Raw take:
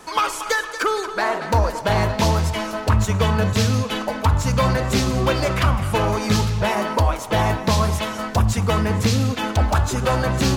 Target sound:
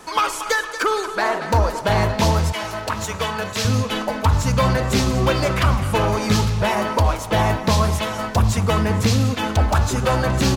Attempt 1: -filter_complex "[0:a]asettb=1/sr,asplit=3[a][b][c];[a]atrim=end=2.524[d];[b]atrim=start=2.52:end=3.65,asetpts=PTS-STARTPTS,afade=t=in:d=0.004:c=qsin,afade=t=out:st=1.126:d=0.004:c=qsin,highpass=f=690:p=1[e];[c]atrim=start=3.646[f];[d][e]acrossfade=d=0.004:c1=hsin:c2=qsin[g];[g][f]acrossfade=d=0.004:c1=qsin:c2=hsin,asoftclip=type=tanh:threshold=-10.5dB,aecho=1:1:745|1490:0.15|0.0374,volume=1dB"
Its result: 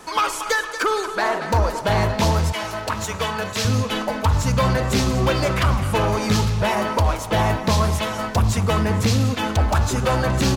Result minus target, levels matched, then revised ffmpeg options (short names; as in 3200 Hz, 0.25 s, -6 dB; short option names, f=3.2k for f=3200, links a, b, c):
soft clip: distortion +14 dB
-filter_complex "[0:a]asettb=1/sr,asplit=3[a][b][c];[a]atrim=end=2.524[d];[b]atrim=start=2.52:end=3.65,asetpts=PTS-STARTPTS,afade=t=in:d=0.004:c=qsin,afade=t=out:st=1.126:d=0.004:c=qsin,highpass=f=690:p=1[e];[c]atrim=start=3.646[f];[d][e]acrossfade=d=0.004:c1=hsin:c2=qsin[g];[g][f]acrossfade=d=0.004:c1=qsin:c2=hsin,asoftclip=type=tanh:threshold=-2dB,aecho=1:1:745|1490:0.15|0.0374,volume=1dB"